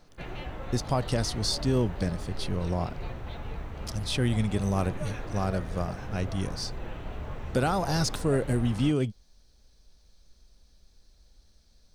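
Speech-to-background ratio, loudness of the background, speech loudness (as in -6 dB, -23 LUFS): 10.0 dB, -39.5 LUFS, -29.5 LUFS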